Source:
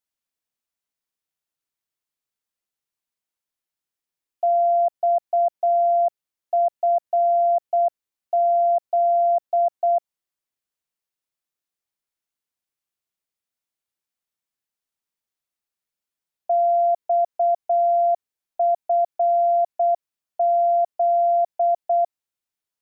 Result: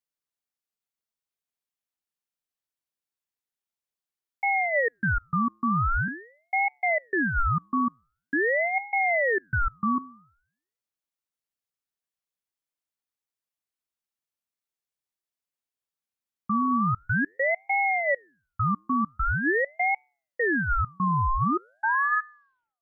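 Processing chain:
turntable brake at the end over 1.95 s
flanger 0.15 Hz, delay 7.3 ms, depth 3.5 ms, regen −90%
ring modulator whose carrier an LFO sweeps 960 Hz, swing 55%, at 0.45 Hz
level +2 dB

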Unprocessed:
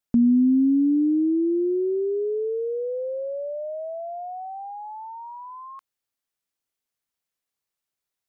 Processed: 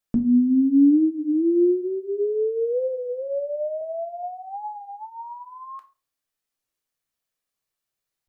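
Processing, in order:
0:03.81–0:04.23: octave-band graphic EQ 125/250/1,000 Hz +11/+8/−4 dB
convolution reverb RT60 0.40 s, pre-delay 6 ms, DRR 4.5 dB
wow of a warped record 33 1/3 rpm, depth 100 cents

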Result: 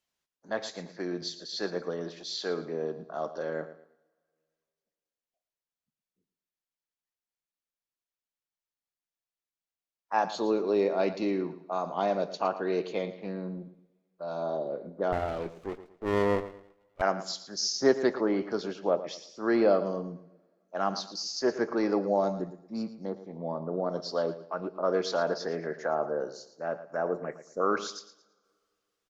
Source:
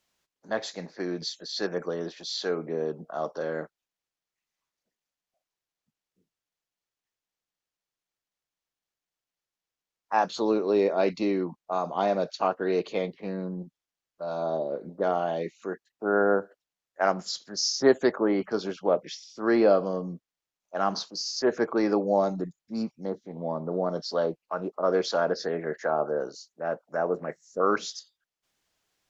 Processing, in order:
noise reduction from a noise print of the clip's start 6 dB
on a send: repeating echo 113 ms, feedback 30%, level −14 dB
on the sum: coupled-rooms reverb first 0.55 s, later 2.3 s, from −18 dB, DRR 17 dB
0:15.12–0:17.02: windowed peak hold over 17 samples
level −3 dB

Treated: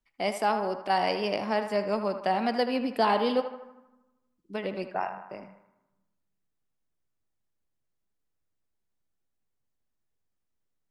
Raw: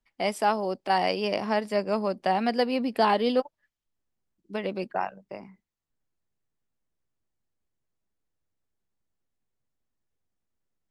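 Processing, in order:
feedback echo with a band-pass in the loop 78 ms, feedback 62%, band-pass 1,200 Hz, level −8 dB
on a send at −17 dB: convolution reverb RT60 1.0 s, pre-delay 7 ms
on the sum: level −2 dB

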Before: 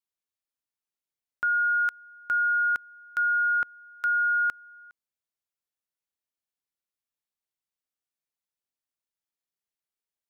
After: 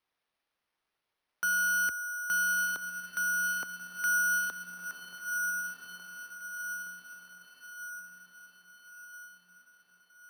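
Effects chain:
high-pass filter 220 Hz 12 dB per octave
mid-hump overdrive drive 26 dB, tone 1,600 Hz, clips at −20 dBFS
frequency shifter +21 Hz
feedback delay with all-pass diffusion 1,362 ms, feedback 53%, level −5 dB
decimation without filtering 6×
level −3 dB

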